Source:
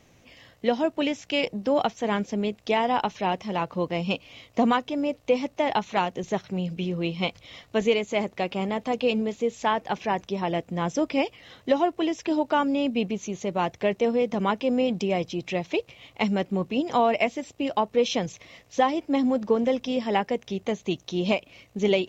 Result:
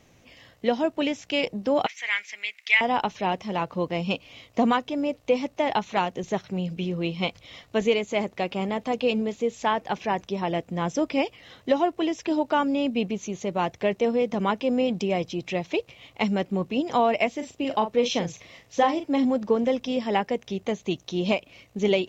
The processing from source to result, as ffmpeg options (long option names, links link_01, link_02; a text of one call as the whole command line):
ffmpeg -i in.wav -filter_complex "[0:a]asettb=1/sr,asplit=3[link_01][link_02][link_03];[link_01]atrim=end=1.864[link_04];[link_02]atrim=start=1.86:end=2.81,asetpts=PTS-STARTPTS,afade=type=in:duration=0.004:curve=qsin,afade=type=out:start_time=0.946:duration=0.004:curve=qsin,highpass=frequency=2100:width_type=q:width=6.8[link_05];[link_03]atrim=start=2.806[link_06];[link_04][link_05]acrossfade=duration=0.004:curve1=hsin:curve2=qsin[link_07];[link_07][link_06]acrossfade=duration=0.004:curve1=qsin:curve2=hsin,asettb=1/sr,asplit=3[link_08][link_09][link_10];[link_08]atrim=end=17.354[link_11];[link_09]atrim=start=17.35:end=19.25,asetpts=PTS-STARTPTS,afade=type=in:duration=0.004:curve=qsin,afade=type=out:start_time=1.896:duration=0.004:curve=qsin,asplit=2[link_12][link_13];[link_13]adelay=41,volume=-8.5dB[link_14];[link_12][link_14]amix=inputs=2:normalize=0,atrim=end_sample=83790[link_15];[link_10]atrim=start=19.246[link_16];[link_11][link_15]acrossfade=duration=0.004:curve1=hsin:curve2=qsin[link_17];[link_17][link_16]acrossfade=duration=0.004:curve1=qsin:curve2=hsin" out.wav